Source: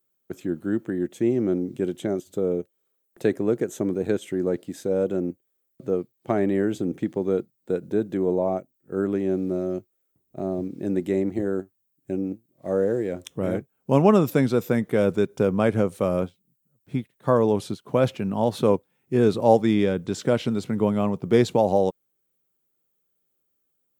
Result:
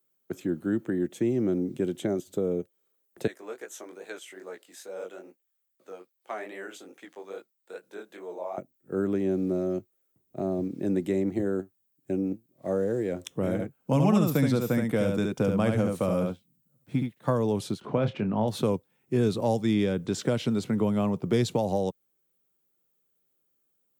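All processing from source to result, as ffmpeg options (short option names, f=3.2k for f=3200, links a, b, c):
-filter_complex "[0:a]asettb=1/sr,asplit=3[a][b][c];[a]atrim=end=3.274[d];[b]atrim=start=3.27:end=8.58,asetpts=PTS-STARTPTS,afade=t=in:d=0.004:c=qsin,afade=t=out:st=5.306:d=0.004:c=qsin,highpass=930,flanger=delay=15.5:depth=7.8:speed=2.4[e];[c]atrim=start=8.576[f];[d][e]acrossfade=d=0.004:c1=hsin:c2=qsin[g];[g][f]acrossfade=d=0.004:c1=qsin:c2=hsin,asettb=1/sr,asplit=3[h][i][j];[h]atrim=end=13.524[k];[i]atrim=start=13.52:end=17.3,asetpts=PTS-STARTPTS,afade=t=in:d=0.004:c=qsin,afade=t=out:st=3.776:d=0.004:c=qsin,bandreject=f=400:w=7.1,aecho=1:1:71:0.596,atrim=end_sample=166698[l];[j]atrim=start=17.296[m];[k][l]acrossfade=d=0.004:c1=hsin:c2=qsin[n];[n][m]acrossfade=d=0.004:c1=qsin:c2=hsin,asettb=1/sr,asplit=3[o][p][q];[o]atrim=end=17.814[r];[p]atrim=start=17.81:end=18.48,asetpts=PTS-STARTPTS,afade=t=in:d=0.004:c=qsin,afade=t=out:st=0.666:d=0.004:c=qsin,lowpass=2.8k,acompressor=mode=upward:threshold=-30dB:ratio=2.5:attack=3.2:release=140:knee=2.83:detection=peak,asplit=2[s][t];[t]adelay=28,volume=-10dB[u];[s][u]amix=inputs=2:normalize=0,atrim=end_sample=29547[v];[q]atrim=start=18.476[w];[r][v]acrossfade=d=0.004:c1=hsin:c2=qsin[x];[x][w]acrossfade=d=0.004:c1=qsin:c2=hsin,highpass=80,acrossover=split=190|3000[y][z][aa];[z]acompressor=threshold=-25dB:ratio=4[ab];[y][ab][aa]amix=inputs=3:normalize=0"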